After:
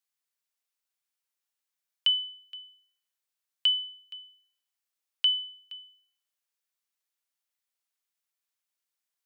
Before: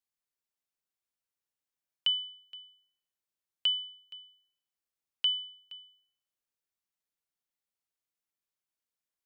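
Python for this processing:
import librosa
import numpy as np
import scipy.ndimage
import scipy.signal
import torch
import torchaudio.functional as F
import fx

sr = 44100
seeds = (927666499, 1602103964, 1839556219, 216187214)

y = fx.highpass(x, sr, hz=1100.0, slope=6)
y = y * 10.0 ** (4.5 / 20.0)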